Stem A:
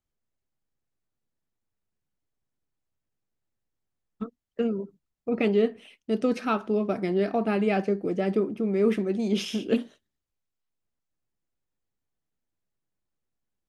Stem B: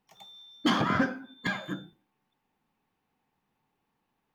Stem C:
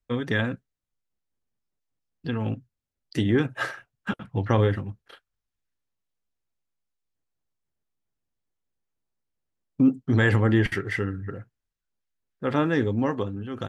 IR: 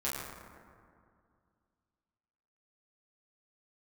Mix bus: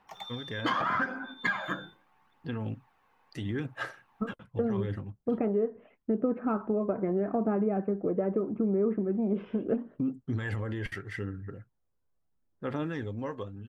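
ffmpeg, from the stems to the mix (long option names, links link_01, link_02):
-filter_complex "[0:a]lowpass=frequency=1400:width=0.5412,lowpass=frequency=1400:width=1.3066,volume=3dB[link_01];[1:a]equalizer=frequency=1200:width=0.52:gain=15,acompressor=threshold=-29dB:ratio=2.5,volume=0dB[link_02];[2:a]alimiter=limit=-14.5dB:level=0:latency=1:release=37,adelay=200,volume=-10.5dB[link_03];[link_01][link_02][link_03]amix=inputs=3:normalize=0,aphaser=in_gain=1:out_gain=1:delay=2:decay=0.36:speed=0.79:type=sinusoidal,acompressor=threshold=-25dB:ratio=6"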